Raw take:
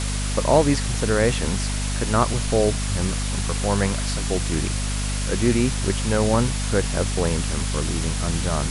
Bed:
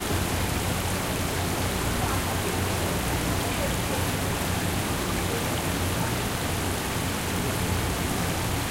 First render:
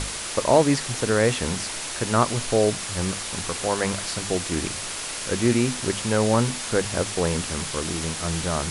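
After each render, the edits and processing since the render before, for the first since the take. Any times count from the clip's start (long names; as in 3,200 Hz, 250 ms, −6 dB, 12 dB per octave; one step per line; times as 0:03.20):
mains-hum notches 50/100/150/200/250 Hz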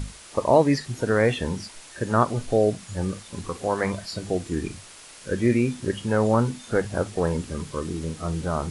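noise reduction from a noise print 14 dB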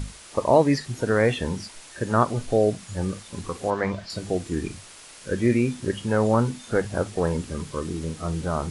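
0:03.70–0:04.10: high-frequency loss of the air 110 metres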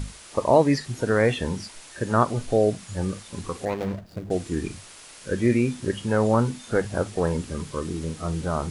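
0:03.65–0:04.31: running median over 41 samples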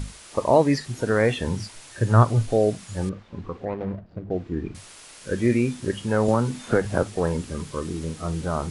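0:01.47–0:02.48: parametric band 110 Hz +13 dB 0.42 octaves
0:03.09–0:04.75: head-to-tape spacing loss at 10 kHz 37 dB
0:06.28–0:07.03: multiband upward and downward compressor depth 100%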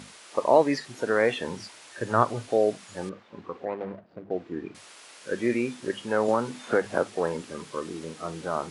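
Bessel high-pass filter 370 Hz, order 2
high-shelf EQ 6,500 Hz −9 dB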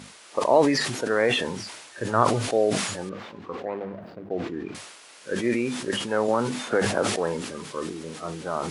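level that may fall only so fast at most 45 dB per second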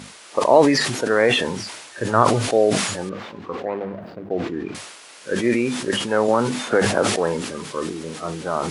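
level +5 dB
brickwall limiter −1 dBFS, peak gain reduction 1.5 dB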